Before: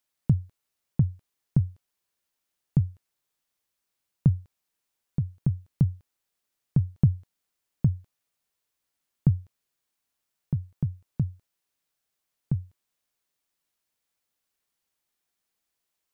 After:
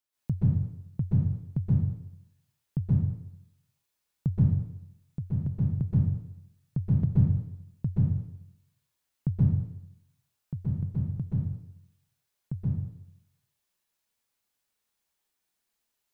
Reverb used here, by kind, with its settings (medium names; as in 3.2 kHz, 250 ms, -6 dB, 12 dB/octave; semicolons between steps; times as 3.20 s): plate-style reverb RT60 0.79 s, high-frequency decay 0.95×, pre-delay 115 ms, DRR -8.5 dB; trim -8 dB